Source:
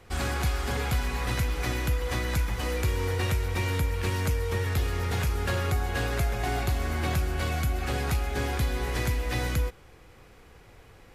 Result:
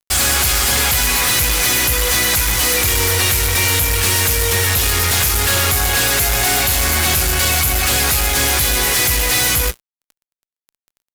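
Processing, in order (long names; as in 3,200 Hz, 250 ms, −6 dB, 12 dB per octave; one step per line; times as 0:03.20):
first-order pre-emphasis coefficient 0.9
mains-hum notches 60/120/180/240/300/360/420/480 Hz
fuzz pedal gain 52 dB, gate −55 dBFS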